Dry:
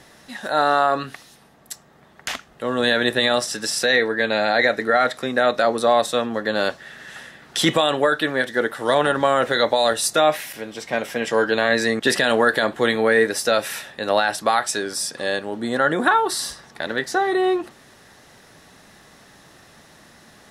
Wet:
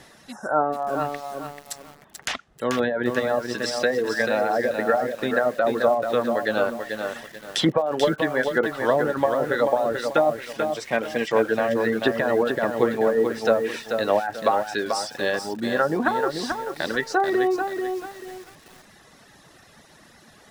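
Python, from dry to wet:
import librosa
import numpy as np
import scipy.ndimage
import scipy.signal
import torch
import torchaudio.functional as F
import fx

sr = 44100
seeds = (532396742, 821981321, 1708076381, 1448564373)

y = fx.env_lowpass_down(x, sr, base_hz=640.0, full_db=-13.0)
y = fx.spec_repair(y, sr, seeds[0], start_s=0.34, length_s=0.42, low_hz=1600.0, high_hz=5100.0, source='after')
y = fx.dereverb_blind(y, sr, rt60_s=1.0)
y = fx.echo_crushed(y, sr, ms=437, feedback_pct=35, bits=7, wet_db=-5.5)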